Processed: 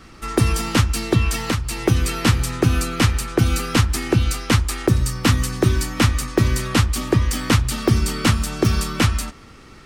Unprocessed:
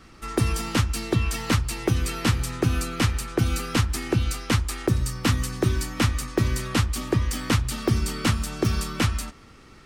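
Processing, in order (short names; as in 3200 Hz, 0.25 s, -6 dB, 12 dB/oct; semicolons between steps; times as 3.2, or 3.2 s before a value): 1.37–1.81 compressor 3:1, threshold -25 dBFS, peak gain reduction 7 dB; gain +5.5 dB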